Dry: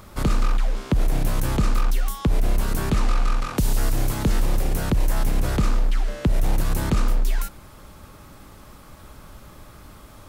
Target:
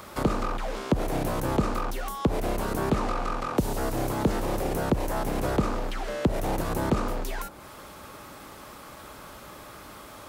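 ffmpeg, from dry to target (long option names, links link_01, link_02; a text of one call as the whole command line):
ffmpeg -i in.wav -filter_complex "[0:a]highpass=frequency=85:poles=1,bass=frequency=250:gain=-9,treble=frequency=4000:gain=-2,acrossover=split=490|1100[link_01][link_02][link_03];[link_03]acompressor=threshold=-44dB:ratio=6[link_04];[link_01][link_02][link_04]amix=inputs=3:normalize=0,volume=5dB" out.wav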